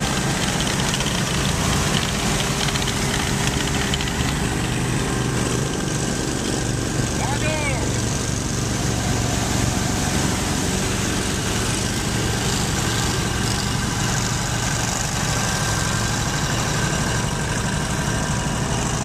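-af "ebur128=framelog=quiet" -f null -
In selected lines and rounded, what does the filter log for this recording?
Integrated loudness:
  I:         -21.2 LUFS
  Threshold: -31.2 LUFS
Loudness range:
  LRA:         1.7 LU
  Threshold: -41.2 LUFS
  LRA low:   -22.0 LUFS
  LRA high:  -20.2 LUFS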